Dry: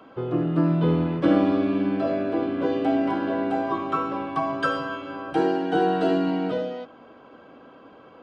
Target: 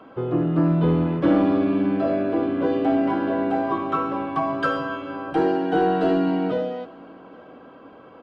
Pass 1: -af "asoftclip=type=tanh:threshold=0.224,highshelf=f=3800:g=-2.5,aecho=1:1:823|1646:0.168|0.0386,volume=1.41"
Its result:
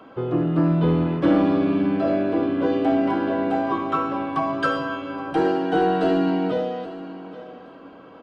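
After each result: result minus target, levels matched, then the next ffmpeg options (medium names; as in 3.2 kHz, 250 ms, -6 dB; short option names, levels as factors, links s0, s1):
echo-to-direct +11 dB; 8 kHz band +5.0 dB
-af "asoftclip=type=tanh:threshold=0.224,highshelf=f=3800:g=-2.5,aecho=1:1:823|1646:0.0473|0.0109,volume=1.41"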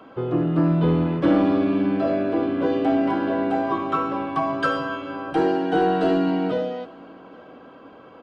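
8 kHz band +5.0 dB
-af "asoftclip=type=tanh:threshold=0.224,highshelf=f=3800:g=-9,aecho=1:1:823|1646:0.0473|0.0109,volume=1.41"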